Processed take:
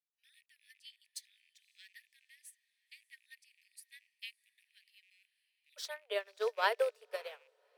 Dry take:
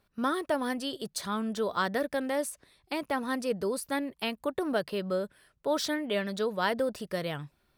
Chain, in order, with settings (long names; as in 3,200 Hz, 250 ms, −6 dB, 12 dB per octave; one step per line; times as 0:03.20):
loose part that buzzes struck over −51 dBFS, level −32 dBFS
Butterworth high-pass 1,800 Hz 96 dB per octave, from 0:05.76 410 Hz
feedback delay with all-pass diffusion 573 ms, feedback 48%, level −15 dB
expander for the loud parts 2.5 to 1, over −42 dBFS